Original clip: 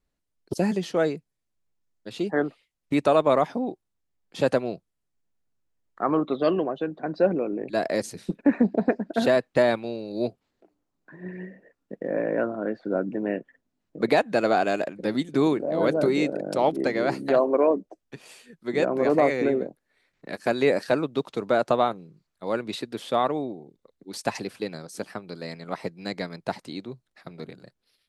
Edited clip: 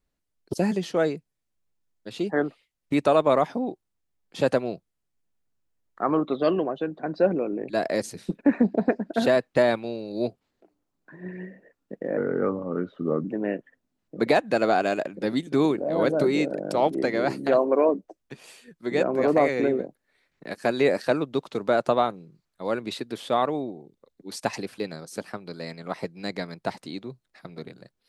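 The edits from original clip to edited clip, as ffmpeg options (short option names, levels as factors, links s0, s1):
-filter_complex "[0:a]asplit=3[s0][s1][s2];[s0]atrim=end=12.174[s3];[s1]atrim=start=12.17:end=13.06,asetpts=PTS-STARTPTS,asetrate=36603,aresample=44100[s4];[s2]atrim=start=13.056[s5];[s3][s4]acrossfade=d=0.004:c1=hsin:c2=hsin[s6];[s6][s5]acrossfade=d=0.004:c1=hsin:c2=hsin"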